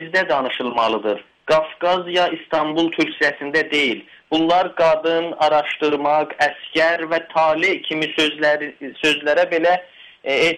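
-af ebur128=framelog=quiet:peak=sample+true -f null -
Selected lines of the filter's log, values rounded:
Integrated loudness:
  I:         -18.5 LUFS
  Threshold: -28.7 LUFS
Loudness range:
  LRA:         1.4 LU
  Threshold: -38.5 LUFS
  LRA low:   -19.3 LUFS
  LRA high:  -17.9 LUFS
Sample peak:
  Peak:       -8.7 dBFS
True peak:
  Peak:       -8.7 dBFS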